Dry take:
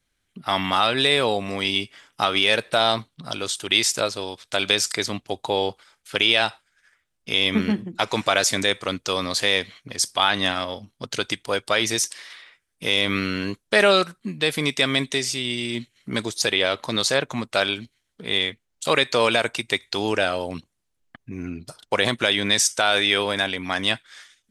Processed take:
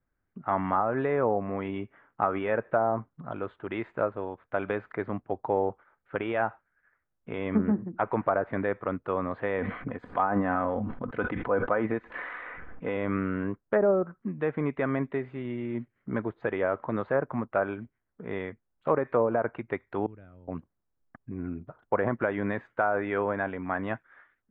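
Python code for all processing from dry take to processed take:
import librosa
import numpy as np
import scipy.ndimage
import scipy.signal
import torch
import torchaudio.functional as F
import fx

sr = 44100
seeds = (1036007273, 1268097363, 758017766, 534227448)

y = fx.chain(x, sr, fx.comb(ms=4.0, depth=0.36),
    fx.sustainer(db_per_s=20.0), at=(9.58, 12.97))
y = fx.chain(y, sr, fx.tone_stack(knobs='10-0-1'),
    fx.comb(ms=0.9, depth=0.31), at=(20.06, 20.48))
y = scipy.signal.sosfilt(scipy.signal.cheby2(4, 60, 5100.0, 'lowpass', fs=sr, output='sos'), y)
y = fx.env_lowpass_down(y, sr, base_hz=630.0, full_db=-15.0)
y = F.gain(torch.from_numpy(y), -3.0).numpy()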